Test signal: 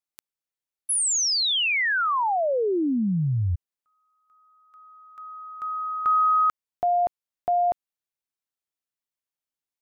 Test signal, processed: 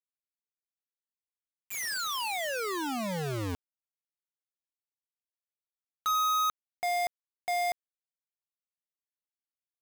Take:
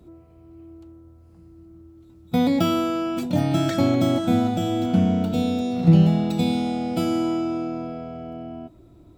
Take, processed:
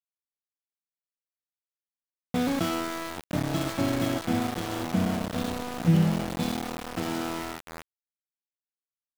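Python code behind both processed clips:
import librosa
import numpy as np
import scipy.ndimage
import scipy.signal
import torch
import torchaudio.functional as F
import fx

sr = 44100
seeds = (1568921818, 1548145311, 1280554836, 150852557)

y = fx.env_lowpass(x, sr, base_hz=700.0, full_db=-15.5)
y = np.where(np.abs(y) >= 10.0 ** (-21.0 / 20.0), y, 0.0)
y = y * 10.0 ** (-6.5 / 20.0)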